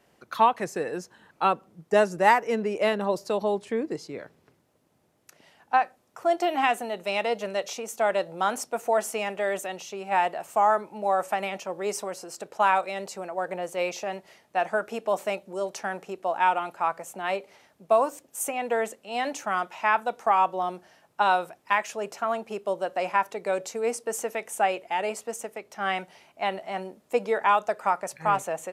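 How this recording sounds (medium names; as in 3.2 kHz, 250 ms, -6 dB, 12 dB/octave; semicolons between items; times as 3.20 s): noise floor -66 dBFS; spectral tilt -3.0 dB/octave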